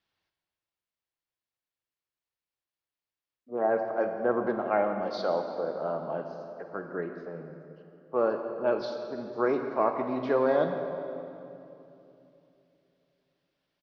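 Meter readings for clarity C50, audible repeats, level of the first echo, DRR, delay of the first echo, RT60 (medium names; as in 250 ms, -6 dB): 6.0 dB, 2, -16.0 dB, 5.5 dB, 168 ms, 2.9 s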